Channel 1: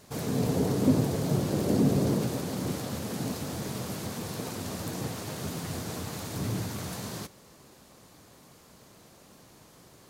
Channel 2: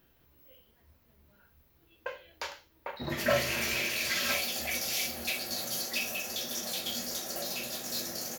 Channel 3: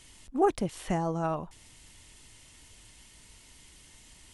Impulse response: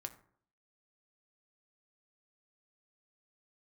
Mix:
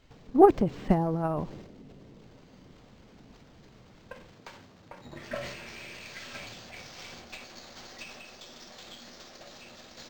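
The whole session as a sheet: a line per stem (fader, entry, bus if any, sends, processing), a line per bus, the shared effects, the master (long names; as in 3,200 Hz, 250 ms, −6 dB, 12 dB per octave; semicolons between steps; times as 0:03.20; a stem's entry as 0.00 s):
−14.5 dB, 0.00 s, no send, downward compressor 2.5 to 1, threshold −43 dBFS, peak gain reduction 17 dB
−11.0 dB, 2.05 s, no send, gain on one half-wave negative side −3 dB
+0.5 dB, 0.00 s, no send, tilt shelving filter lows +5.5 dB, about 1,400 Hz; expander for the loud parts 1.5 to 1, over −37 dBFS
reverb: not used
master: transient designer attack +6 dB, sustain +10 dB; linearly interpolated sample-rate reduction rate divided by 4×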